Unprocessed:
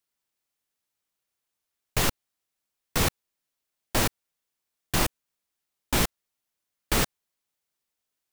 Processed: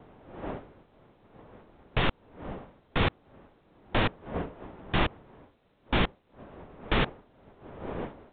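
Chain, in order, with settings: wind noise 600 Hz -44 dBFS; vibrato 5.7 Hz 48 cents; A-law 64 kbps 8 kHz

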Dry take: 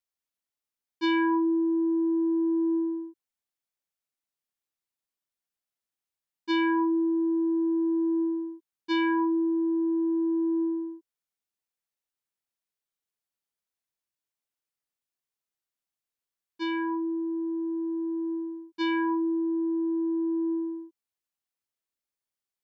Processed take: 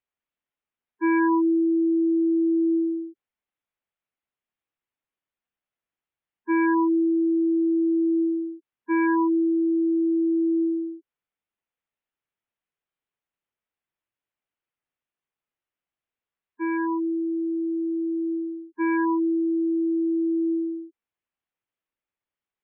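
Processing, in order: low-pass 3.1 kHz 24 dB/octave; spectral gate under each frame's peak -15 dB strong; trim +4 dB

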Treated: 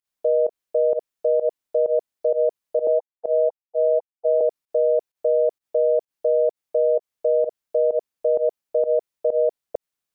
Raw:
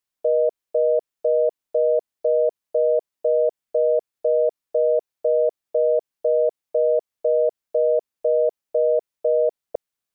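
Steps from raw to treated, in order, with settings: 2.87–4.41 s: formants replaced by sine waves; volume shaper 129 bpm, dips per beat 1, -21 dB, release 95 ms

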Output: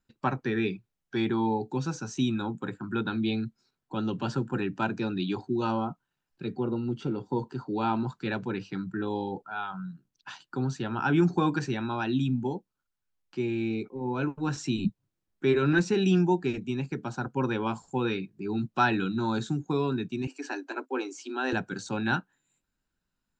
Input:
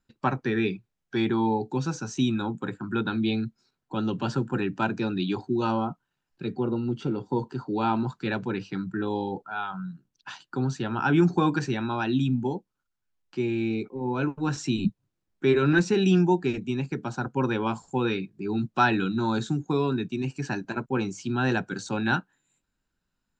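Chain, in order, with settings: 20.27–21.53 s: steep high-pass 260 Hz 96 dB/octave; trim -2.5 dB

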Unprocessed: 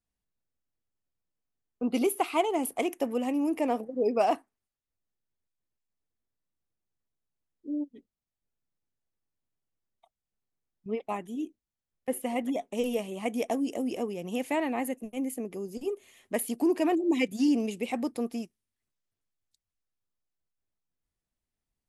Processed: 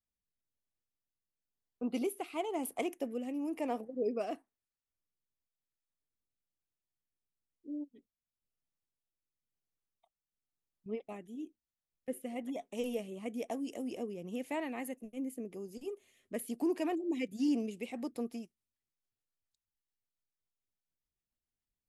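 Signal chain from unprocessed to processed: rotary cabinet horn 1 Hz, later 7 Hz, at 17.27 s; trim -6 dB

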